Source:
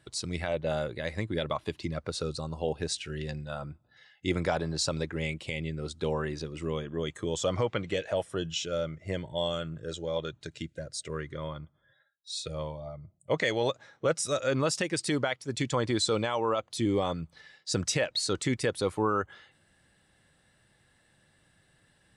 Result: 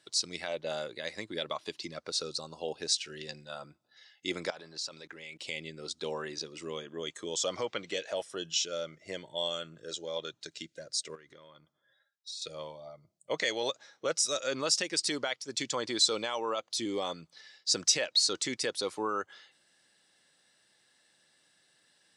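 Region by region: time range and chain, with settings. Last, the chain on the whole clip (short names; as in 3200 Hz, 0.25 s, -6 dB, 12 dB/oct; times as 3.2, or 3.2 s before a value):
4.5–5.39 bell 1800 Hz +5.5 dB 2.5 oct + level quantiser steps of 21 dB
11.15–12.42 compressor 10:1, threshold -43 dBFS + mismatched tape noise reduction decoder only
whole clip: HPF 270 Hz 12 dB/oct; bell 5300 Hz +12.5 dB 1.4 oct; gain -5 dB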